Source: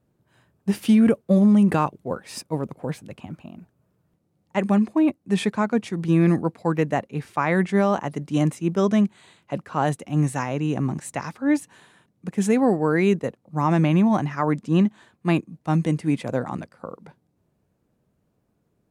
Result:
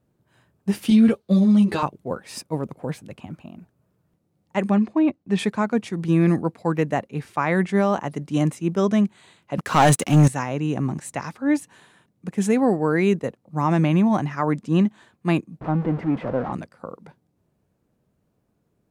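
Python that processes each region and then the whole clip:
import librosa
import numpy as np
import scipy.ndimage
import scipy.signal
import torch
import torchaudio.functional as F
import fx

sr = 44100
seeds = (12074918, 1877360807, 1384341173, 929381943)

y = fx.chain(x, sr, fx.peak_eq(hz=4100.0, db=13.5, octaves=0.8),
    fx.ensemble(), at=(0.9, 1.83))
y = fx.chain(y, sr, fx.lowpass(hz=5000.0, slope=12),
    fx.gate_hold(open_db=-43.0, close_db=-47.0, hold_ms=71.0, range_db=-21, attack_ms=1.4, release_ms=100.0), at=(4.7, 5.39))
y = fx.chain(y, sr, fx.high_shelf(hz=2300.0, db=8.0),
    fx.leveller(passes=3), at=(9.58, 10.28))
y = fx.chain(y, sr, fx.zero_step(step_db=-24.5),
    fx.lowpass(hz=1200.0, slope=12),
    fx.low_shelf(hz=210.0, db=-6.0), at=(15.61, 16.53))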